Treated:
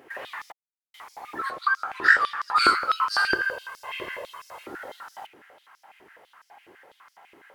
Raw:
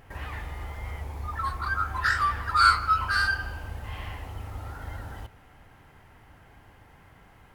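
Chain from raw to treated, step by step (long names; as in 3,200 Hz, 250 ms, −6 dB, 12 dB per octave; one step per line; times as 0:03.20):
sub-octave generator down 1 octave, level +3 dB
0:00.52–0:00.94: silence
0:01.50–0:02.56: high-shelf EQ 10,000 Hz −10.5 dB
0:03.30–0:04.66: comb filter 1.9 ms, depth 89%
high-pass on a step sequencer 12 Hz 360–5,300 Hz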